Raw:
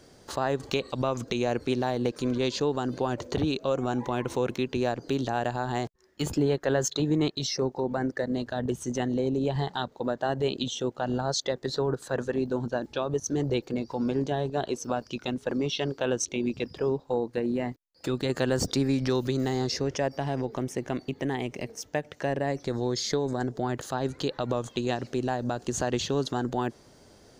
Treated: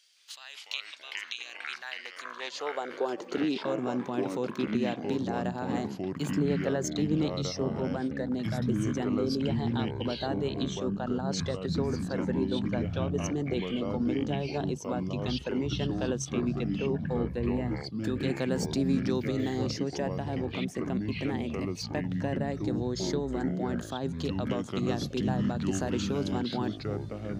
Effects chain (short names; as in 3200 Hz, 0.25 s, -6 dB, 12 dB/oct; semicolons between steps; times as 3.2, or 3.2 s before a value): high-pass sweep 2900 Hz -> 180 Hz, 1.44–3.72; echoes that change speed 0.166 s, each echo -5 st, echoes 3; gain -6.5 dB